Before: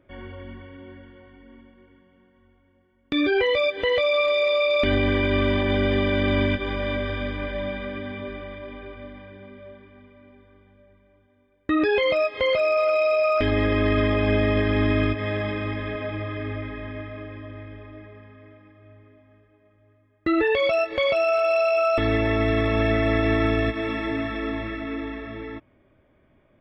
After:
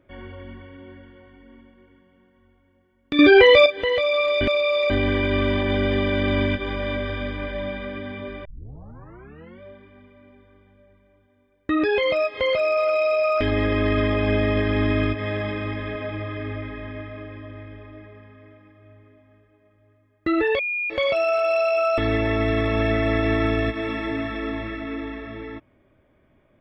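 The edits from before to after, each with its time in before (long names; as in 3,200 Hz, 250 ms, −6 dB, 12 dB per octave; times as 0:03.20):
0:03.19–0:03.66: clip gain +9.5 dB
0:04.41–0:04.90: reverse
0:08.45: tape start 1.17 s
0:20.59–0:20.90: beep over 2,430 Hz −23 dBFS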